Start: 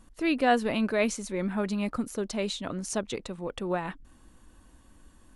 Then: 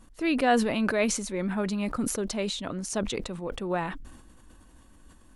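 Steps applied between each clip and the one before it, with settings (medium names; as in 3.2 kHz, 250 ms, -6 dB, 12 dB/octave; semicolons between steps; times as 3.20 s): decay stretcher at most 55 dB/s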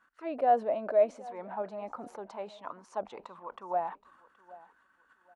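auto-wah 640–1500 Hz, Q 5.8, down, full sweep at -23 dBFS; feedback delay 773 ms, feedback 26%, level -20 dB; trim +6 dB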